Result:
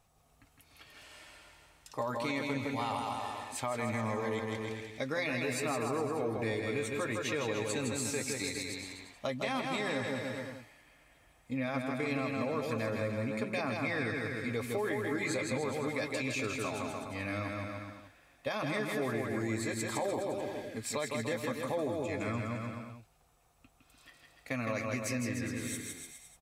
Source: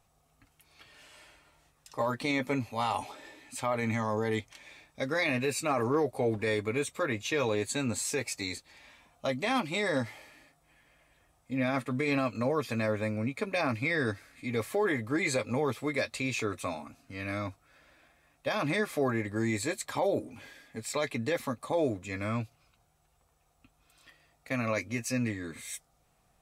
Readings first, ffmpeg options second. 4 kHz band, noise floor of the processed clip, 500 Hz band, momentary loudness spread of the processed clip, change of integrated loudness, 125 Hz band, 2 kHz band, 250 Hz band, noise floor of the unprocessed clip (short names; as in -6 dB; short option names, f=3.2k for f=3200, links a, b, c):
-2.5 dB, -66 dBFS, -3.0 dB, 9 LU, -3.5 dB, -3.0 dB, -3.0 dB, -3.0 dB, -70 dBFS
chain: -af "aecho=1:1:160|296|411.6|509.9|593.4:0.631|0.398|0.251|0.158|0.1,acompressor=threshold=-33dB:ratio=2.5"